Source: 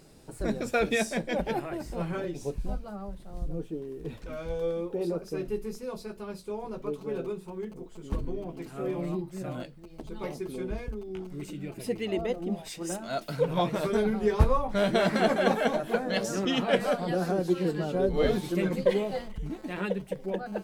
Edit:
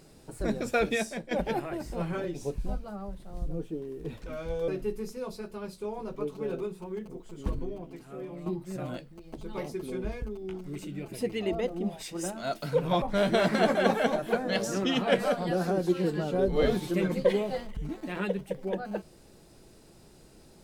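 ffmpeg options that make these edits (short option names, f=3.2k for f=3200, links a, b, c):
-filter_complex "[0:a]asplit=5[a][b][c][d][e];[a]atrim=end=1.31,asetpts=PTS-STARTPTS,afade=t=out:st=0.8:d=0.51:silence=0.298538[f];[b]atrim=start=1.31:end=4.682,asetpts=PTS-STARTPTS,afade=t=in:d=0.004:c=hsin:silence=0.298538[g];[c]atrim=start=5.338:end=9.12,asetpts=PTS-STARTPTS,afade=t=out:st=2.862:d=0.92:c=qua:silence=0.354813[h];[d]atrim=start=9.12:end=13.682,asetpts=PTS-STARTPTS,afade=t=in:d=0.004:c=hsin:silence=0.354813[i];[e]atrim=start=14.628[j];[f][g]concat=n=2:v=0:a=1[k];[h][i]concat=n=2:v=0:a=1[l];[k][l]acrossfade=d=0.004:c1=hsin:c2=hsin[m];[m][j]acrossfade=d=0.004:c1=hsin:c2=hsin"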